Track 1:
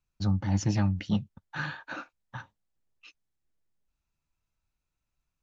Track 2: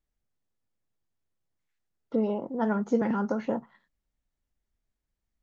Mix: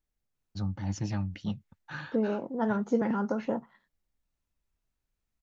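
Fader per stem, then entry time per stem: -6.0 dB, -1.5 dB; 0.35 s, 0.00 s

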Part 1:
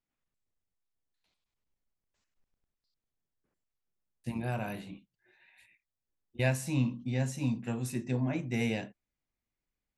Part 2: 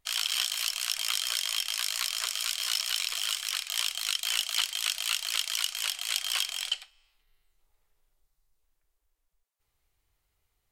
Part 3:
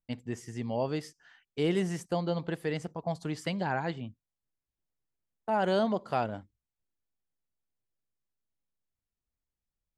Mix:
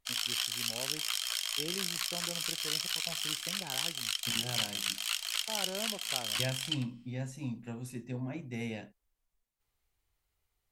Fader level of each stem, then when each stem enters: -7.0 dB, -4.5 dB, -13.5 dB; 0.00 s, 0.00 s, 0.00 s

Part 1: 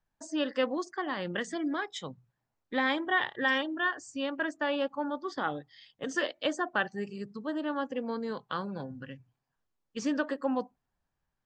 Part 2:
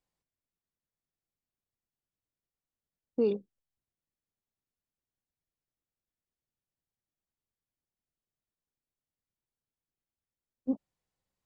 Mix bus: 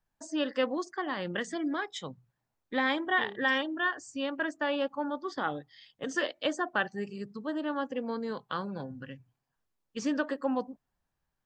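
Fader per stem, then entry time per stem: 0.0 dB, -14.5 dB; 0.00 s, 0.00 s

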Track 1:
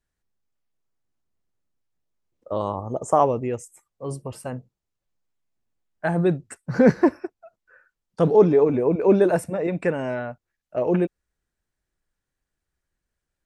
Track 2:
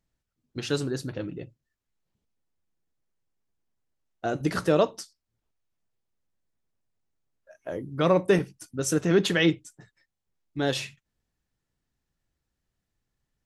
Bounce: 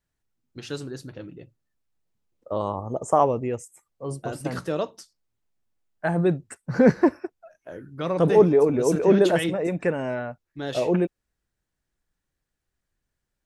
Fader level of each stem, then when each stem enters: -1.0 dB, -5.5 dB; 0.00 s, 0.00 s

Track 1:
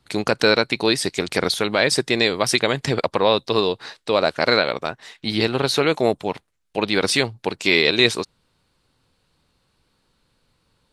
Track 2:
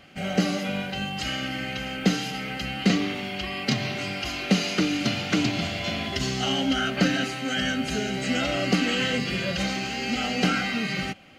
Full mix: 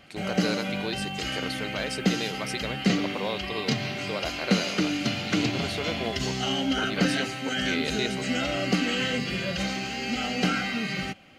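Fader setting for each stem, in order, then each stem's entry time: -14.5 dB, -2.0 dB; 0.00 s, 0.00 s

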